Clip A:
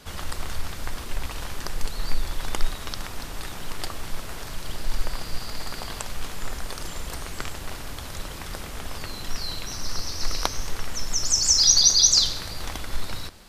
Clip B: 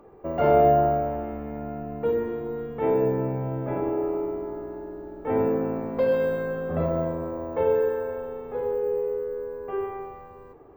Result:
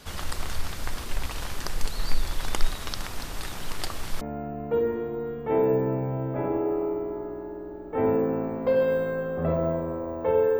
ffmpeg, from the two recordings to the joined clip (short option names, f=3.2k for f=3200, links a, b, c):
-filter_complex "[0:a]apad=whole_dur=10.59,atrim=end=10.59,atrim=end=4.212[a];[1:a]atrim=start=1.528:end=7.91[b];[a][b]acrossfade=d=0.004:c1=hsin:c2=hsin"